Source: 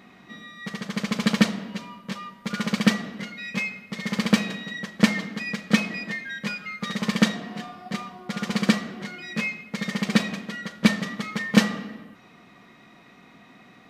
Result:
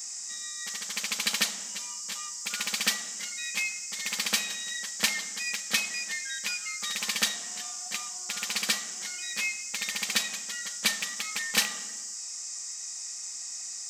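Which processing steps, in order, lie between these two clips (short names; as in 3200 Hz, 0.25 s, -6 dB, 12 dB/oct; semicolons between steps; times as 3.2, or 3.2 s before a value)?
rattling part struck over -25 dBFS, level -15 dBFS; bell 810 Hz +7 dB 0.2 oct; band noise 4900–7900 Hz -45 dBFS; differentiator; soft clip -16.5 dBFS, distortion -23 dB; gain +7.5 dB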